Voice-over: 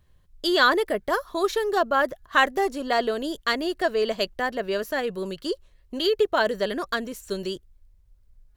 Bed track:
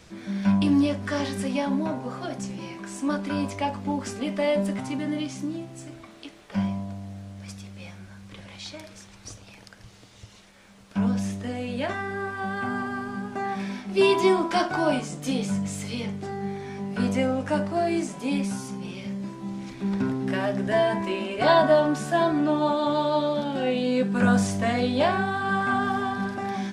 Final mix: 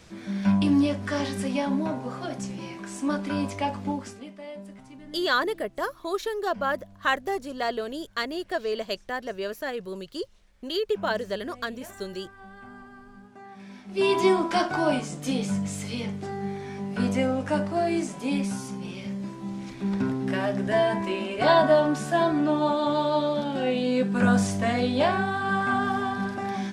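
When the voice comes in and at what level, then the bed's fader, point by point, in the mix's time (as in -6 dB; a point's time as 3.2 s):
4.70 s, -5.0 dB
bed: 3.88 s -0.5 dB
4.37 s -16.5 dB
13.51 s -16.5 dB
14.18 s -0.5 dB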